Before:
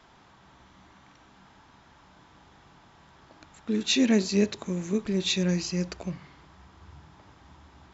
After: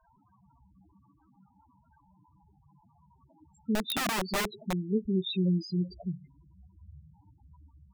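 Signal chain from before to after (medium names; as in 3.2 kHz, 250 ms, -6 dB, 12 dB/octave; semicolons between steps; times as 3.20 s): loudest bins only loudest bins 4; 3.75–4.73 s: integer overflow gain 24.5 dB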